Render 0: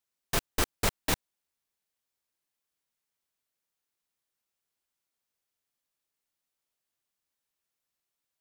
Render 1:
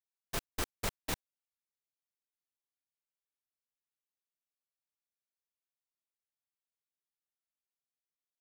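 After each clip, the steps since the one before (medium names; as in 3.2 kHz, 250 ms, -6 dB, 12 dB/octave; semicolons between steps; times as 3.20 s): gate -33 dBFS, range -8 dB; trim -8 dB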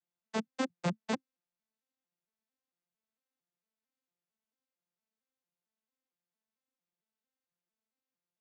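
vocoder on a broken chord major triad, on F3, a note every 226 ms; trim +6.5 dB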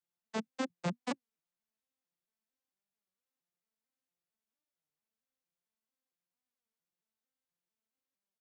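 warped record 33 1/3 rpm, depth 250 cents; trim -2.5 dB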